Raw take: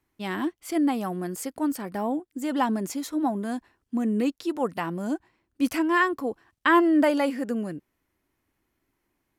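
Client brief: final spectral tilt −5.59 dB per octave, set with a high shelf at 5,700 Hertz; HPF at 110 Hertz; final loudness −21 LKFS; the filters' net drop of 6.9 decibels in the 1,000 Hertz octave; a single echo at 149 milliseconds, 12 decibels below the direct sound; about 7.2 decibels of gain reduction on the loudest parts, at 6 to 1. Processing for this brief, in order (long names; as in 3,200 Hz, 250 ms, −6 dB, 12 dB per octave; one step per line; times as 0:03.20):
high-pass filter 110 Hz
parametric band 1,000 Hz −8 dB
high-shelf EQ 5,700 Hz −7 dB
downward compressor 6 to 1, threshold −26 dBFS
single-tap delay 149 ms −12 dB
level +10.5 dB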